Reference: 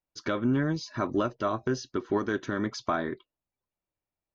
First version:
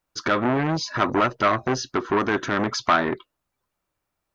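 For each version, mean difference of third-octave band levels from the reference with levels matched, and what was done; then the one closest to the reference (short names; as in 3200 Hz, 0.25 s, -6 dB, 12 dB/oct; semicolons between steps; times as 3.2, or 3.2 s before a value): 4.0 dB: bell 1300 Hz +7 dB 0.8 oct; in parallel at -1.5 dB: limiter -22 dBFS, peak gain reduction 9 dB; on the sum: core saturation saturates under 1200 Hz; gain +5 dB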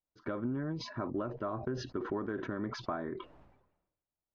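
5.5 dB: compressor, threshold -27 dBFS, peak gain reduction 6 dB; LPF 1400 Hz 12 dB/oct; sustainer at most 65 dB/s; gain -4.5 dB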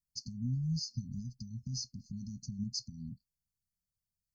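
17.5 dB: bell 270 Hz -8 dB 0.65 oct; limiter -25 dBFS, peak gain reduction 7 dB; brick-wall FIR band-stop 250–4200 Hz; gain +2 dB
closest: first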